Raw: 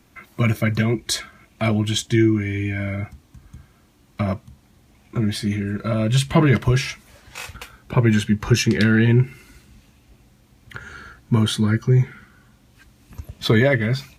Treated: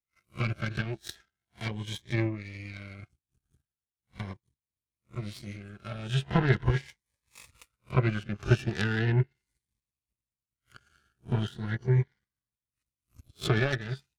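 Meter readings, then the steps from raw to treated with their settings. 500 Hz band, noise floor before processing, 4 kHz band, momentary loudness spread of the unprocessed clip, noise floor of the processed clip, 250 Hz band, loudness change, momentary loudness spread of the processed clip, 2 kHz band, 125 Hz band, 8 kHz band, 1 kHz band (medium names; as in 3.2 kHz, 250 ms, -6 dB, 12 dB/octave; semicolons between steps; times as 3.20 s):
-11.0 dB, -56 dBFS, -13.0 dB, 19 LU, under -85 dBFS, -14.5 dB, -10.0 dB, 16 LU, -9.5 dB, -9.5 dB, under -15 dB, -8.5 dB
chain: reverse spectral sustain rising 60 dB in 0.32 s; fifteen-band graphic EQ 250 Hz -11 dB, 630 Hz -7 dB, 10 kHz +10 dB; low-pass that closes with the level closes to 2.2 kHz, closed at -16 dBFS; power-law waveshaper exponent 2; Shepard-style phaser rising 0.39 Hz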